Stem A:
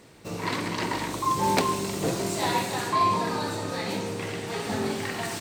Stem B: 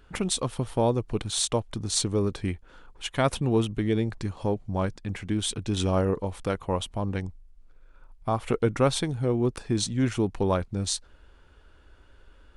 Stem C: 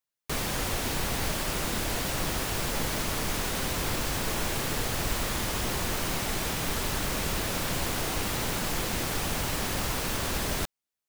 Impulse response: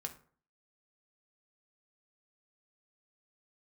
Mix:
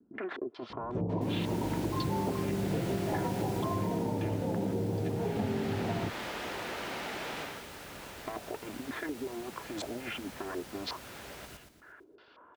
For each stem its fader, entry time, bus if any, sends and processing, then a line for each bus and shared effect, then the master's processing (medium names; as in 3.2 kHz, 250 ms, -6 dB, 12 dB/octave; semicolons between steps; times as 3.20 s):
+0.5 dB, 0.70 s, no bus, no send, no echo send, steep low-pass 930 Hz 48 dB/octave; tilt EQ -3 dB/octave; compression, threshold -25 dBFS, peak gain reduction 9 dB
+0.5 dB, 0.00 s, muted 5.12–7.62 s, bus A, no send, no echo send, comb filter that takes the minimum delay 2.9 ms; compressor with a negative ratio -28 dBFS, ratio -0.5; step-sequenced low-pass 5.5 Hz 230–7800 Hz
3.42 s -1.5 dB -> 4.11 s -8.5 dB, 0.80 s, bus A, no send, echo send -22 dB, band-stop 1.1 kHz, Q 14; level rider gain up to 11 dB; auto duck -16 dB, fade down 0.25 s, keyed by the second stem
bus A: 0.0 dB, band-pass 310–3100 Hz; compression 3:1, threshold -37 dBFS, peak gain reduction 11.5 dB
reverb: none
echo: feedback delay 117 ms, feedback 45%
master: high-pass 56 Hz; compression 2:1, threshold -31 dBFS, peak gain reduction 4.5 dB